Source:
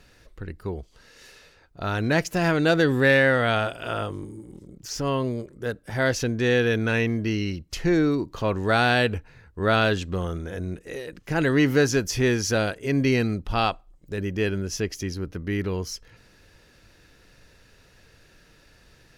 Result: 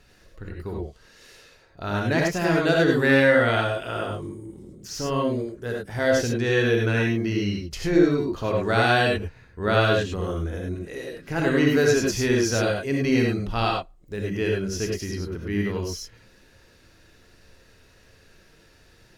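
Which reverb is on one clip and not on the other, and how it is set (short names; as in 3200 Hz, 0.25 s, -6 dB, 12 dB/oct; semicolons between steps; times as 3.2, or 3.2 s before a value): non-linear reverb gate 0.12 s rising, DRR -0.5 dB; gain -3 dB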